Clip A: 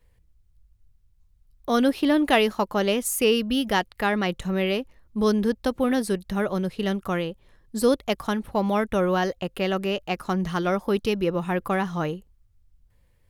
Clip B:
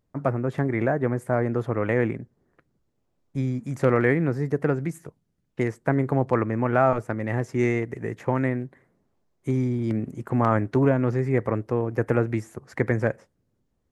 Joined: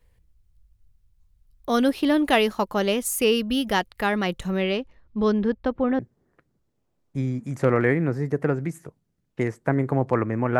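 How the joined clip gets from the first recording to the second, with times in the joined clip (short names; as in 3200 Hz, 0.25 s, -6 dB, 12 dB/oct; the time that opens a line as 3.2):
clip A
4.56–5.99 LPF 7200 Hz -> 1500 Hz
5.99 switch to clip B from 2.19 s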